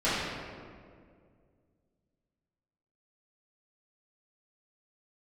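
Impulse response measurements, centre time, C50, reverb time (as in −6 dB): 123 ms, −2.5 dB, 2.1 s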